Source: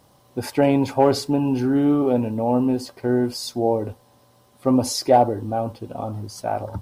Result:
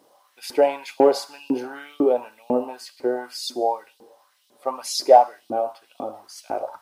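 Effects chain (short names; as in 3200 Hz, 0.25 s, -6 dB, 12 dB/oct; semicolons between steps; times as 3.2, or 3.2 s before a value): Schroeder reverb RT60 0.74 s, combs from 25 ms, DRR 14 dB; LFO high-pass saw up 2 Hz 280–4000 Hz; gain -3.5 dB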